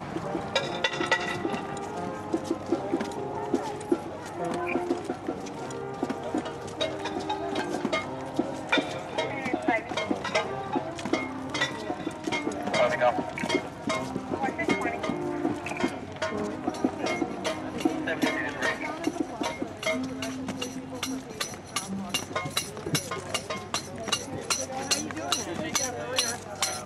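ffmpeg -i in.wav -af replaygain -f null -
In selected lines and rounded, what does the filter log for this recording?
track_gain = +8.7 dB
track_peak = 0.229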